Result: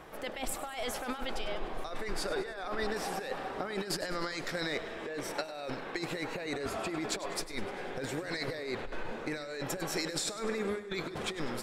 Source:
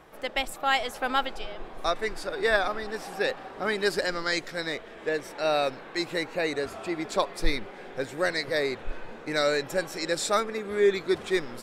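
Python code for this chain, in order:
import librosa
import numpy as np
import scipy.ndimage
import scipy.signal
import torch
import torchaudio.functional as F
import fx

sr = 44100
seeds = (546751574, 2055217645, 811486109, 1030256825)

y = fx.over_compress(x, sr, threshold_db=-34.0, ratio=-1.0)
y = fx.transient(y, sr, attack_db=4, sustain_db=-6, at=(5.27, 6.13))
y = fx.echo_feedback(y, sr, ms=100, feedback_pct=57, wet_db=-14.5)
y = y * librosa.db_to_amplitude(-2.5)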